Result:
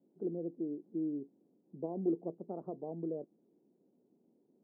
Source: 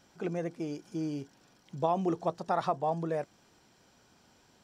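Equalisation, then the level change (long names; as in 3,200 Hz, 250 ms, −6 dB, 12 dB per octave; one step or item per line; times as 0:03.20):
high-pass filter 190 Hz 24 dB per octave
transistor ladder low-pass 480 Hz, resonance 35%
high-frequency loss of the air 470 metres
+3.5 dB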